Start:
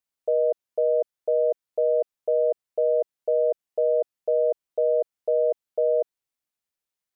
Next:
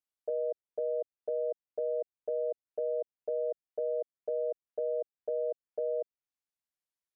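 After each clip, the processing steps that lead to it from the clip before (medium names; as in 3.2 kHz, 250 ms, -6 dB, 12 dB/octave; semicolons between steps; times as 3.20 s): low-pass that closes with the level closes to 670 Hz, closed at -23.5 dBFS; trim -9 dB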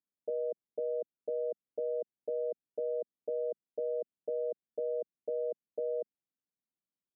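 band-pass filter 220 Hz, Q 1.6; trim +8.5 dB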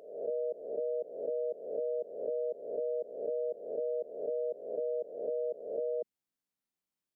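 reverse spectral sustain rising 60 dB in 0.80 s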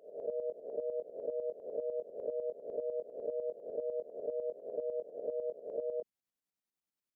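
tremolo saw up 10 Hz, depth 70%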